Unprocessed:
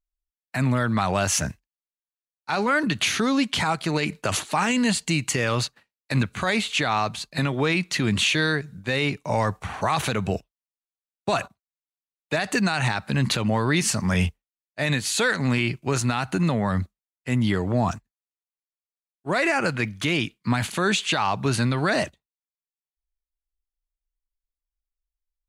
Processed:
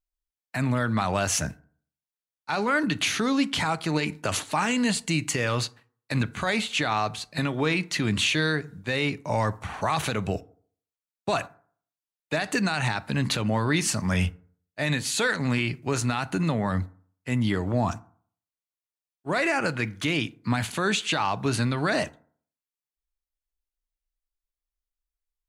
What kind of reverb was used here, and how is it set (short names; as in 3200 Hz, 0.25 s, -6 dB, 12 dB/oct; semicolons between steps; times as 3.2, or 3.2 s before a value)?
FDN reverb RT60 0.52 s, low-frequency decay 1×, high-frequency decay 0.45×, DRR 15 dB; gain -2.5 dB